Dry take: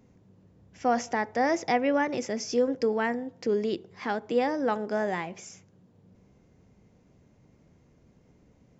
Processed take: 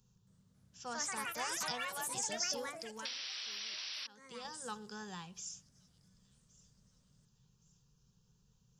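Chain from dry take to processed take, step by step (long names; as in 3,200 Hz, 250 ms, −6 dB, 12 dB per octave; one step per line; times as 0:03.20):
phaser with its sweep stopped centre 420 Hz, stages 8
delay with a high-pass on its return 1,117 ms, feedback 46%, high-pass 4,000 Hz, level −21.5 dB
delay with pitch and tempo change per echo 273 ms, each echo +4 semitones, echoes 3
0:03.05–0:04.07: sound drawn into the spectrogram noise 290–5,900 Hz −23 dBFS
drawn EQ curve 110 Hz 0 dB, 330 Hz −19 dB, 860 Hz −13 dB, 3,000 Hz +4 dB
0:02.69–0:04.45: downward compressor 6 to 1, threshold −41 dBFS, peak gain reduction 21 dB
level −2 dB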